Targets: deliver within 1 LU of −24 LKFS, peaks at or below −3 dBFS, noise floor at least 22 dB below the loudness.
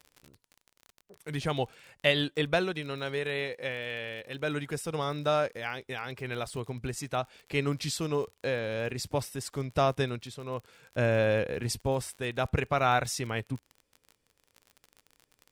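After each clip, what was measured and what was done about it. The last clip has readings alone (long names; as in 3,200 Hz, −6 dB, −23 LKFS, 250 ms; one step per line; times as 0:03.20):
crackle rate 39 per second; integrated loudness −31.5 LKFS; sample peak −9.5 dBFS; target loudness −24.0 LKFS
→ click removal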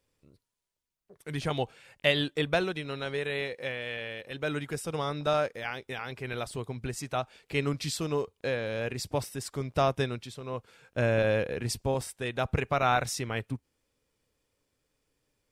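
crackle rate 0.064 per second; integrated loudness −31.5 LKFS; sample peak −9.5 dBFS; target loudness −24.0 LKFS
→ level +7.5 dB
brickwall limiter −3 dBFS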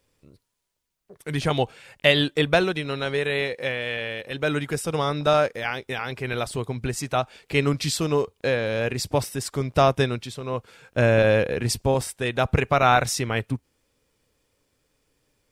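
integrated loudness −24.0 LKFS; sample peak −3.0 dBFS; background noise floor −73 dBFS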